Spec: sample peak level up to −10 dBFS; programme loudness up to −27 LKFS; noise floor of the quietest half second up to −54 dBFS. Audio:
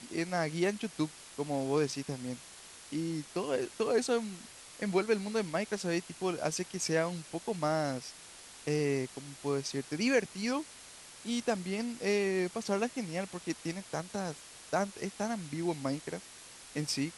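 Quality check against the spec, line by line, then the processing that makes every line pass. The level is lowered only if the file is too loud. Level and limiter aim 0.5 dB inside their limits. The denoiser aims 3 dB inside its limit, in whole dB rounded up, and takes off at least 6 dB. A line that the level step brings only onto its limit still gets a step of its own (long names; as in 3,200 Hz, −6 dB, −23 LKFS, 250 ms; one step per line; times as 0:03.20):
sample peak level −15.0 dBFS: in spec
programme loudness −34.0 LKFS: in spec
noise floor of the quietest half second −52 dBFS: out of spec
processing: broadband denoise 6 dB, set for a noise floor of −52 dBFS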